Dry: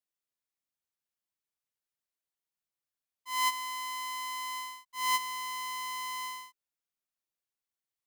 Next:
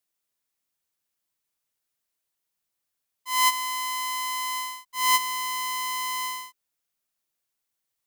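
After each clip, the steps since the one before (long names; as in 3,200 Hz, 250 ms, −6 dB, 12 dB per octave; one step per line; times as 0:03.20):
high-shelf EQ 6,500 Hz +4.5 dB
level +7 dB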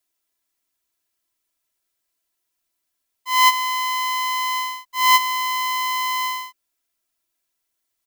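comb filter 3 ms, depth 91%
level +2 dB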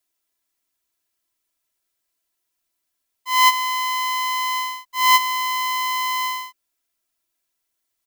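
no processing that can be heard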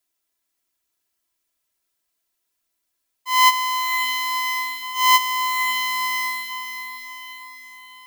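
feedback delay with all-pass diffusion 529 ms, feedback 52%, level −8 dB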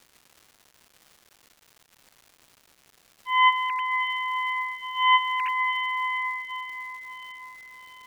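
three sine waves on the formant tracks
surface crackle 370 per second −38 dBFS
level −4 dB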